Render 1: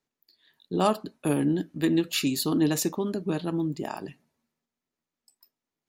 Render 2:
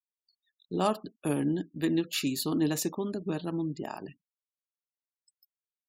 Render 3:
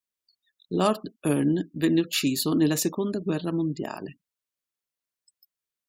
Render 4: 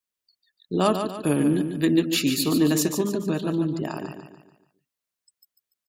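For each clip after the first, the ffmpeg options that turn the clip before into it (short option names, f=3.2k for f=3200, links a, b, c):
-af "afftfilt=real='re*gte(hypot(re,im),0.00447)':imag='im*gte(hypot(re,im),0.00447)':win_size=1024:overlap=0.75,volume=-4dB"
-af "equalizer=f=820:w=4.2:g=-5.5,volume=5.5dB"
-af "aecho=1:1:145|290|435|580|725:0.422|0.181|0.078|0.0335|0.0144,volume=1.5dB"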